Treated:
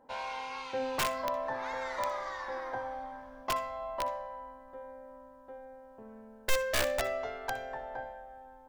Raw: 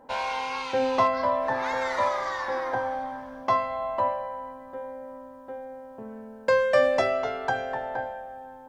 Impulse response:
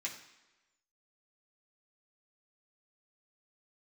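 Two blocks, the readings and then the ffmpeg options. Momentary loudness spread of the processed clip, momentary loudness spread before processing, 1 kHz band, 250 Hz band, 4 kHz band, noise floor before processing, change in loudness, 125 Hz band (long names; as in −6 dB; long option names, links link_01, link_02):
19 LU, 18 LU, −9.0 dB, −10.0 dB, −1.5 dB, −46 dBFS, −8.5 dB, −6.0 dB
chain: -filter_complex "[0:a]aeval=exprs='(mod(5.31*val(0)+1,2)-1)/5.31':channel_layout=same,asplit=2[link_01][link_02];[1:a]atrim=start_sample=2205,adelay=61[link_03];[link_02][link_03]afir=irnorm=-1:irlink=0,volume=-15dB[link_04];[link_01][link_04]amix=inputs=2:normalize=0,asubboost=boost=4.5:cutoff=57,volume=-9dB"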